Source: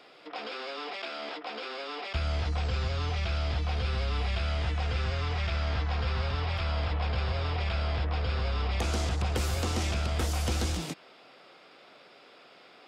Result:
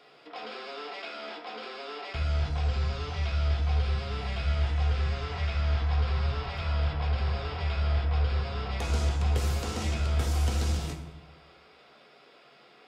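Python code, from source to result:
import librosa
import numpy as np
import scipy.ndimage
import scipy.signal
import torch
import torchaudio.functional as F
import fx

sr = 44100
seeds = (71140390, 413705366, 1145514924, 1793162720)

y = fx.rev_fdn(x, sr, rt60_s=0.99, lf_ratio=1.3, hf_ratio=0.6, size_ms=42.0, drr_db=1.5)
y = y * 10.0 ** (-4.0 / 20.0)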